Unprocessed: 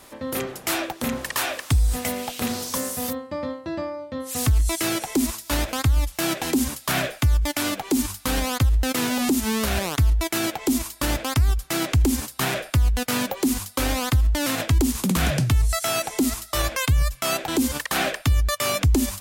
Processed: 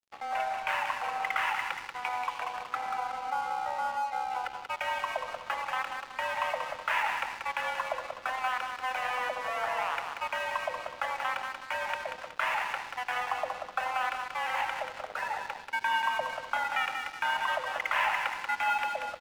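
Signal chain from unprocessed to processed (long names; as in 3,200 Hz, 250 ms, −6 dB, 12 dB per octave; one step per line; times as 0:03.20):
gate on every frequency bin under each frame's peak −20 dB strong
in parallel at +1 dB: downward compressor, threshold −27 dBFS, peak gain reduction 11.5 dB
on the sum: pitch vibrato 5.8 Hz 9.5 cents
single-sideband voice off tune +250 Hz 440–2,500 Hz
repeating echo 185 ms, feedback 46%, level −5.5 dB
on a send at −8 dB: convolution reverb RT60 1.2 s, pre-delay 63 ms
on the sum: dead-zone distortion −37.5 dBFS
level −5 dB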